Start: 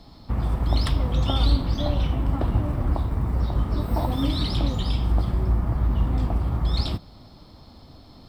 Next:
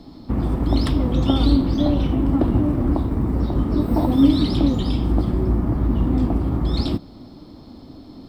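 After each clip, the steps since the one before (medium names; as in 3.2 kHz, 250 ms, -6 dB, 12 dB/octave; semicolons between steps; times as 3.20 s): peaking EQ 290 Hz +13.5 dB 1.3 oct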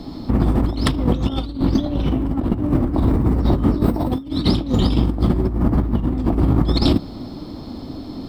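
compressor with a negative ratio -22 dBFS, ratio -0.5; trim +5 dB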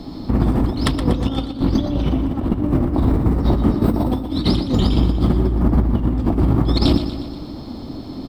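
feedback delay 120 ms, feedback 56%, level -10 dB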